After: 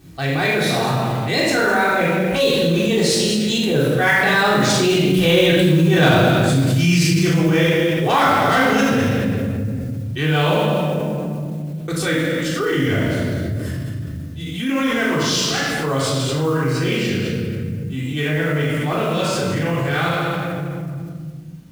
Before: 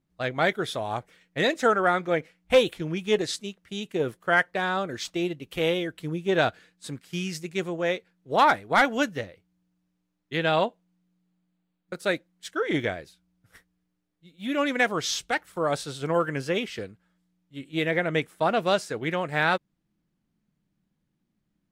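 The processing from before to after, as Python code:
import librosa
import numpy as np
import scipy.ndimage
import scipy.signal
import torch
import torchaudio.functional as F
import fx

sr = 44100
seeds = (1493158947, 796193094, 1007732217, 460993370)

p1 = fx.doppler_pass(x, sr, speed_mps=25, closest_m=23.0, pass_at_s=5.85)
p2 = fx.high_shelf(p1, sr, hz=2300.0, db=9.5)
p3 = fx.transient(p2, sr, attack_db=-12, sustain_db=0)
p4 = scipy.signal.sosfilt(scipy.signal.butter(2, 68.0, 'highpass', fs=sr, output='sos'), p3)
p5 = fx.doubler(p4, sr, ms=38.0, db=-8)
p6 = fx.room_shoebox(p5, sr, seeds[0], volume_m3=880.0, walls='mixed', distance_m=3.6)
p7 = fx.mod_noise(p6, sr, seeds[1], snr_db=24)
p8 = fx.low_shelf(p7, sr, hz=200.0, db=11.5)
p9 = p8 + fx.echo_single(p8, sr, ms=205, db=-11.5, dry=0)
p10 = fx.env_flatten(p9, sr, amount_pct=70)
y = p10 * 10.0 ** (-1.0 / 20.0)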